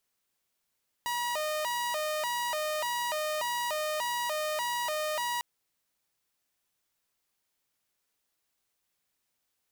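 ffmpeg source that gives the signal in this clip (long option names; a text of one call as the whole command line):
ffmpeg -f lavfi -i "aevalsrc='0.0447*(2*mod((787.5*t+174.5/1.7*(0.5-abs(mod(1.7*t,1)-0.5))),1)-1)':duration=4.35:sample_rate=44100" out.wav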